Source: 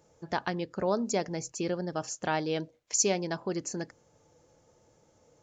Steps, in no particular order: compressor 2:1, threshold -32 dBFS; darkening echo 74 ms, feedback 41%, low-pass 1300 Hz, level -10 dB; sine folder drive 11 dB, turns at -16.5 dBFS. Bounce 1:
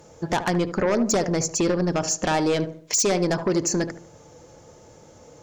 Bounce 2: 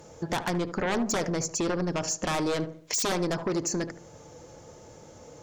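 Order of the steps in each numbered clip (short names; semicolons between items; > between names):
compressor > sine folder > darkening echo; sine folder > compressor > darkening echo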